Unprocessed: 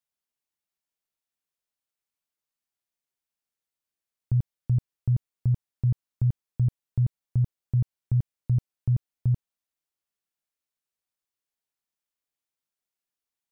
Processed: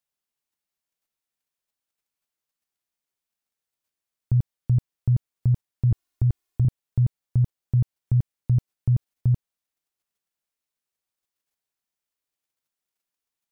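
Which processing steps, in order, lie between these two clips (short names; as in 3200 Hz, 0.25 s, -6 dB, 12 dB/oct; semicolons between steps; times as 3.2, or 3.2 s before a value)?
5.91–6.65 comb 2.8 ms, depth 91%; in parallel at +1.5 dB: level quantiser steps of 15 dB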